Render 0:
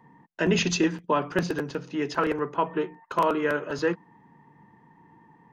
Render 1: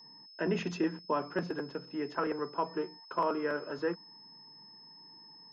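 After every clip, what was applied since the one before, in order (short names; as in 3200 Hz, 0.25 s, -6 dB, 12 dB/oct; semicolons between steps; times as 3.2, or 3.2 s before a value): three-band isolator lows -13 dB, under 150 Hz, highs -14 dB, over 2100 Hz; whine 5200 Hz -45 dBFS; gain -7 dB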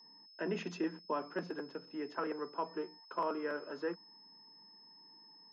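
HPF 180 Hz 24 dB/oct; gain -5 dB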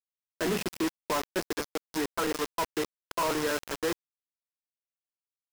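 companded quantiser 2-bit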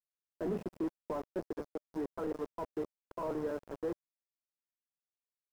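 EQ curve 600 Hz 0 dB, 2500 Hz -19 dB, 4100 Hz -22 dB; gain -5.5 dB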